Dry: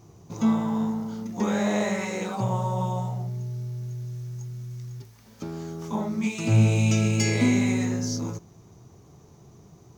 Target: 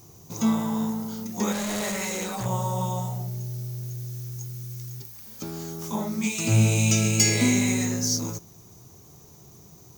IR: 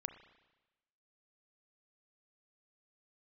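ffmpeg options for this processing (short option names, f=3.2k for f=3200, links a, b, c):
-filter_complex "[0:a]asettb=1/sr,asplit=3[a][b][c];[a]atrim=end=1.524[d];[b]atrim=start=1.52:end=2.46,asetpts=PTS-STARTPTS,afade=t=in:d=0.004:c=qsin,afade=t=out:st=0.936:d=0.004:c=qsin,volume=27dB,asoftclip=hard,volume=-27dB[e];[c]atrim=start=2.456[f];[d][e]acrossfade=d=0.004:c1=hsin:c2=qsin[g];[g][f]acrossfade=d=0.004:c1=qsin:c2=hsin,aemphasis=mode=production:type=75fm"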